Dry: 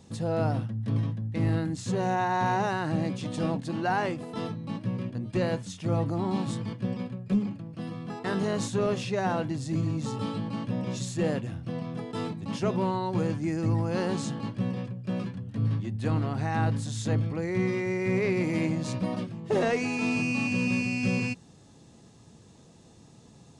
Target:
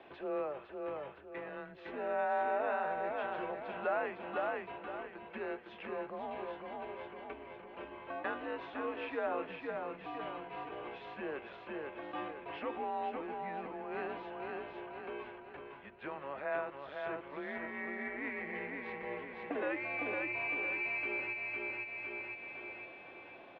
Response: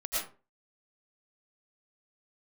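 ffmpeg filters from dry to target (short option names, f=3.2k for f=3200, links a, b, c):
-filter_complex "[0:a]asettb=1/sr,asplit=3[a][b][c];[a]atrim=end=4.954[d];[b]atrim=start=4.95:end=5.38,asetpts=PTS-STARTPTS,afade=t=in:d=0.004:c=qsin,afade=t=out:st=0.426:d=0.004:c=qsin,aecho=1:1:6:0.97,atrim=end_sample=18963[e];[c]atrim=start=5.376[f];[d][e]acrossfade=d=0.004:c1=hsin:c2=qsin[g];[g][f]acrossfade=d=0.004:c1=qsin:c2=hsin,aecho=1:1:507|1014|1521|2028|2535:0.596|0.238|0.0953|0.0381|0.0152,acompressor=threshold=-43dB:ratio=3,highpass=f=550:t=q:w=0.5412,highpass=f=550:t=q:w=1.307,lowpass=f=2.9k:t=q:w=0.5176,lowpass=f=2.9k:t=q:w=0.7071,lowpass=f=2.9k:t=q:w=1.932,afreqshift=-140,volume=9dB"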